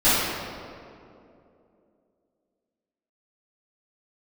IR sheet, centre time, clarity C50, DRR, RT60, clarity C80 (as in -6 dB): 0.143 s, -3.5 dB, -16.5 dB, 2.7 s, -0.5 dB